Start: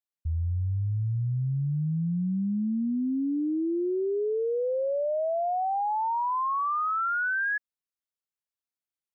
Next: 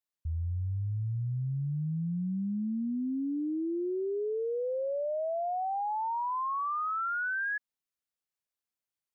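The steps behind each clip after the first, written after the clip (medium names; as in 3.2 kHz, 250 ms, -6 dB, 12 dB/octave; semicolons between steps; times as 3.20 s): peak limiter -29 dBFS, peak gain reduction 4.5 dB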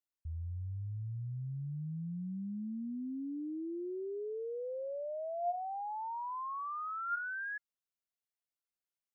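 feedback comb 700 Hz, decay 0.25 s, mix 70%; trim +2.5 dB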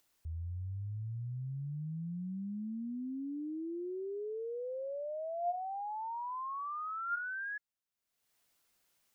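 upward compressor, threshold -59 dBFS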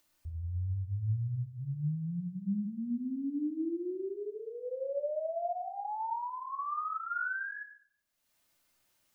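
simulated room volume 1900 m³, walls furnished, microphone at 2.6 m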